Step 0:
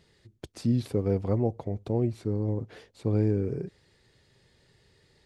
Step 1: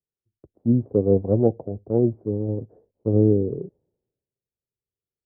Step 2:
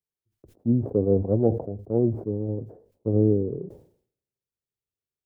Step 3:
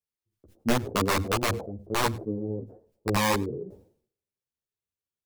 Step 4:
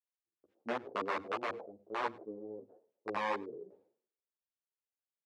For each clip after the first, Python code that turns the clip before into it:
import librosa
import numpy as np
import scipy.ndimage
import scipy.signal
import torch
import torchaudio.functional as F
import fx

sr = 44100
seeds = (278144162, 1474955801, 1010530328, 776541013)

y1 = scipy.signal.sosfilt(scipy.signal.cheby2(4, 80, 3700.0, 'lowpass', fs=sr, output='sos'), x)
y1 = fx.low_shelf(y1, sr, hz=180.0, db=-9.0)
y1 = fx.band_widen(y1, sr, depth_pct=100)
y1 = y1 * librosa.db_to_amplitude(9.0)
y2 = fx.sustainer(y1, sr, db_per_s=110.0)
y2 = y2 * librosa.db_to_amplitude(-3.0)
y3 = (np.mod(10.0 ** (14.0 / 20.0) * y2 + 1.0, 2.0) - 1.0) / 10.0 ** (14.0 / 20.0)
y3 = y3 + 10.0 ** (-22.5 / 20.0) * np.pad(y3, (int(99 * sr / 1000.0), 0))[:len(y3)]
y3 = fx.ensemble(y3, sr)
y4 = fx.bandpass_edges(y3, sr, low_hz=420.0, high_hz=2100.0)
y4 = y4 * librosa.db_to_amplitude(-7.5)